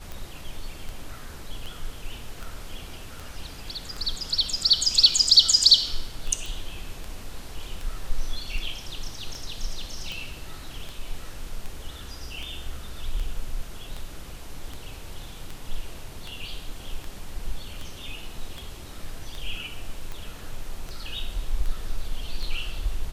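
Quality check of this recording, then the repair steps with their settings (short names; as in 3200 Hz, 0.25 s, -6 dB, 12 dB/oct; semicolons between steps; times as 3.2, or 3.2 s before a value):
tick 78 rpm
6.46 pop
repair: de-click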